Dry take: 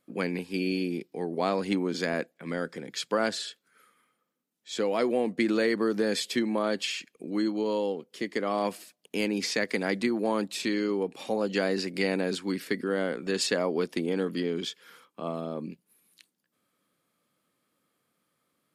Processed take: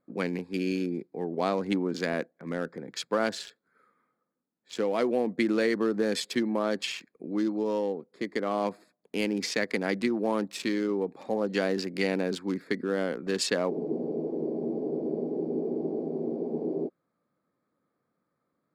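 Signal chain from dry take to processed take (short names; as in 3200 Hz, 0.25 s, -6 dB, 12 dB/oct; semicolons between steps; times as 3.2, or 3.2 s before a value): Wiener smoothing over 15 samples; spectral freeze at 13.73, 3.14 s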